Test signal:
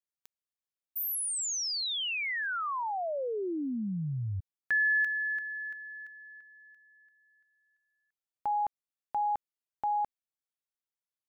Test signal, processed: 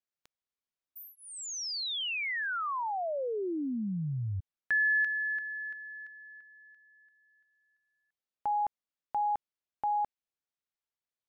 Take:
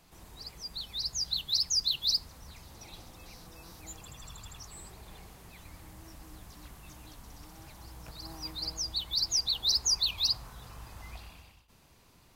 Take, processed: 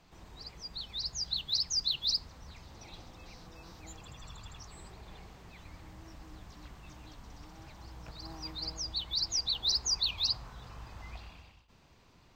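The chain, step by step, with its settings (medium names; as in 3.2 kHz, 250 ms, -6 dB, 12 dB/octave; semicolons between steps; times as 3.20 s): boxcar filter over 4 samples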